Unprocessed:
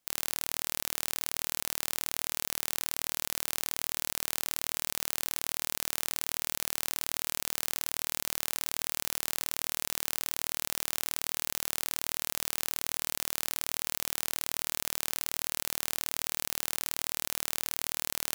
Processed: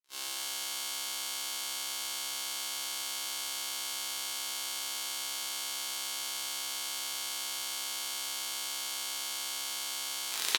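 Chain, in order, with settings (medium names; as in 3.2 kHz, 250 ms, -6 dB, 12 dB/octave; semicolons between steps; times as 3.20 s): tape stop on the ending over 0.48 s; saturation -15 dBFS, distortion -19 dB; high-pass 140 Hz 24 dB/octave; distance through air 85 m; speed mistake 45 rpm record played at 78 rpm; fifteen-band graphic EQ 250 Hz -9 dB, 630 Hz -8 dB, 4 kHz +4 dB; multi-tap echo 46/140/150/173/323/609 ms -15.5/-11.5/-17.5/-12.5/-8/-18 dB; gated-style reverb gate 120 ms flat, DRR -3.5 dB; gate -47 dBFS, range -34 dB; trim +8.5 dB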